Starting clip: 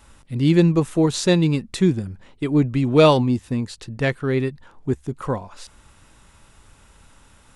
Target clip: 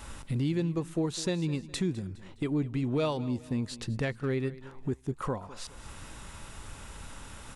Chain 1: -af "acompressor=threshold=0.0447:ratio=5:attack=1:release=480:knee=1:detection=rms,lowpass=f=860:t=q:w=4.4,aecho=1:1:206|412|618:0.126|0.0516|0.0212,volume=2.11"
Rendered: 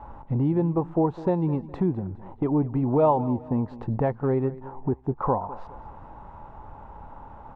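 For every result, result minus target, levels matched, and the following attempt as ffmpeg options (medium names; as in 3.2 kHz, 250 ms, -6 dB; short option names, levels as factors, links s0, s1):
1 kHz band +6.5 dB; compression: peak gain reduction -5 dB
-af "acompressor=threshold=0.0447:ratio=5:attack=1:release=480:knee=1:detection=rms,aecho=1:1:206|412|618:0.126|0.0516|0.0212,volume=2.11"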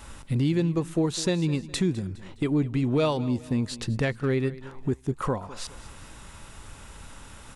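compression: peak gain reduction -5 dB
-af "acompressor=threshold=0.0211:ratio=5:attack=1:release=480:knee=1:detection=rms,aecho=1:1:206|412|618:0.126|0.0516|0.0212,volume=2.11"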